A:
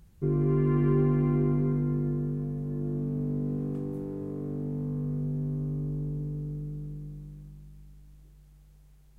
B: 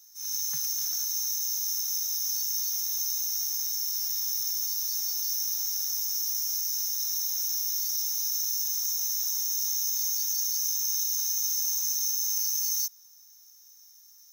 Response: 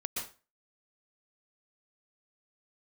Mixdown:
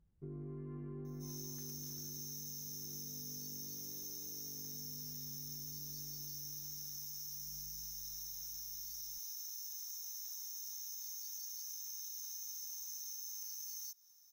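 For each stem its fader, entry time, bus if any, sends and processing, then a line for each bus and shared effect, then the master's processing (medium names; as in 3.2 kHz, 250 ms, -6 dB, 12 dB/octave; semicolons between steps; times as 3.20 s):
7.21 s -17.5 dB -> 7.59 s -4.5 dB, 0.00 s, no send, treble shelf 2.3 kHz -11.5 dB
-10.5 dB, 1.05 s, no send, hard clipper -19 dBFS, distortion -33 dB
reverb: none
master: compression, threshold -43 dBFS, peak gain reduction 8 dB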